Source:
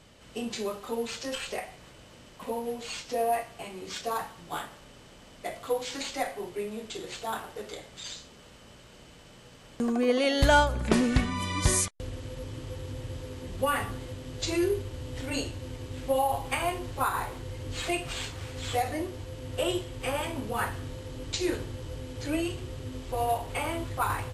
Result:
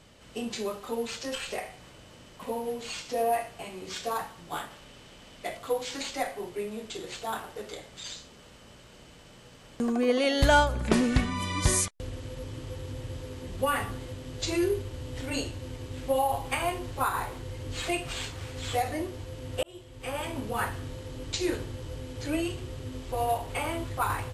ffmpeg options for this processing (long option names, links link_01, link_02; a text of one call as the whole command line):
ffmpeg -i in.wav -filter_complex "[0:a]asettb=1/sr,asplit=3[link_01][link_02][link_03];[link_01]atrim=end=1.394[link_04];[link_02]atrim=start=1.39:end=4.13,asetpts=PTS-STARTPTS,afade=type=in:duration=0.004:curve=qsin,afade=type=out:start_time=2.736:duration=0.004:curve=qsin,aecho=1:1:74:0.266,atrim=end_sample=120834[link_05];[link_03]atrim=start=4.126[link_06];[link_04][link_05]acrossfade=duration=0.004:curve1=hsin:curve2=qsin[link_07];[link_07][link_06]acrossfade=duration=0.004:curve1=qsin:curve2=hsin,asettb=1/sr,asplit=3[link_08][link_09][link_10];[link_08]atrim=end=4.704[link_11];[link_09]atrim=start=4.7:end=5.57,asetpts=PTS-STARTPTS,afade=type=in:duration=0.004:curve=qsin,afade=type=out:start_time=0.866:duration=0.004:curve=qsin,equalizer=frequency=3000:width_type=o:width=1.3:gain=4[link_12];[link_10]atrim=start=5.566[link_13];[link_11][link_12]acrossfade=duration=0.004:curve1=hsin:curve2=qsin[link_14];[link_14][link_13]acrossfade=duration=0.004:curve1=qsin:curve2=hsin,asplit=2[link_15][link_16];[link_15]atrim=end=19.63,asetpts=PTS-STARTPTS,afade=type=out:start_time=19.626:duration=0.004:curve=hsin[link_17];[link_16]atrim=start=19.63,asetpts=PTS-STARTPTS,afade=type=in:duration=0.74[link_18];[link_17][link_18]concat=n=2:v=0:a=1" out.wav